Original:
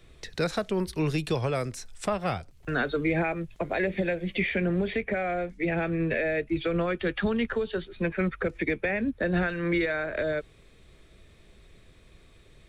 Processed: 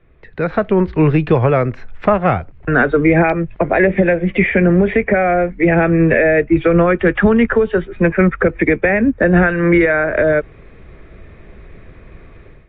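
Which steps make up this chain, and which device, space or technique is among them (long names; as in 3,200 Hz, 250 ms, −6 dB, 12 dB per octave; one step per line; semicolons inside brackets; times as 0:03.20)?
action camera in a waterproof case (low-pass filter 2,200 Hz 24 dB per octave; automatic gain control gain up to 15 dB; level +1.5 dB; AAC 64 kbit/s 44,100 Hz)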